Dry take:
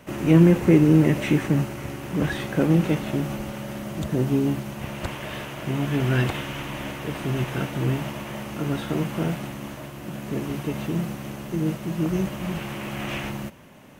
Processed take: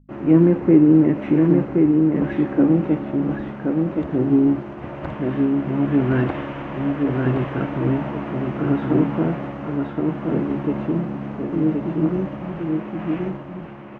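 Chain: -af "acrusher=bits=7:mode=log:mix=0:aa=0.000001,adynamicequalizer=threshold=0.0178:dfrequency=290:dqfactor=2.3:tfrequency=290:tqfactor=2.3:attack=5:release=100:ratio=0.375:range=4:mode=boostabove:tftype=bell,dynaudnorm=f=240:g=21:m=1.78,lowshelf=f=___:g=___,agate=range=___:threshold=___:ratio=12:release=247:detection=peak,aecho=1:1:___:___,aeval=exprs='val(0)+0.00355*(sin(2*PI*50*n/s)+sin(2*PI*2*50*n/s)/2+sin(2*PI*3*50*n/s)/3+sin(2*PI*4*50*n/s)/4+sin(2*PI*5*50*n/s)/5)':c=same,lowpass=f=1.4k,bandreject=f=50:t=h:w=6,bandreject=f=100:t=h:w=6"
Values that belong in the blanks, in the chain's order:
200, -6, 0.00447, 0.0224, 1072, 0.668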